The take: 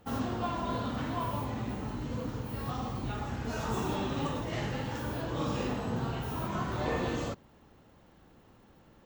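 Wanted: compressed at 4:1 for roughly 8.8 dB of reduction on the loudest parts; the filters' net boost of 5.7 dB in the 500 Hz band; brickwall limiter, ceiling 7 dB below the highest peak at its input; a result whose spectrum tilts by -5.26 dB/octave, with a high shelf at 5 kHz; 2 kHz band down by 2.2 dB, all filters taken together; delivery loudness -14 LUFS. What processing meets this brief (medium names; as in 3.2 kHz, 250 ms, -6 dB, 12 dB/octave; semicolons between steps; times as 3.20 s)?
peaking EQ 500 Hz +7 dB; peaking EQ 2 kHz -4 dB; treble shelf 5 kHz +4 dB; compression 4:1, threshold -34 dBFS; trim +25.5 dB; peak limiter -4.5 dBFS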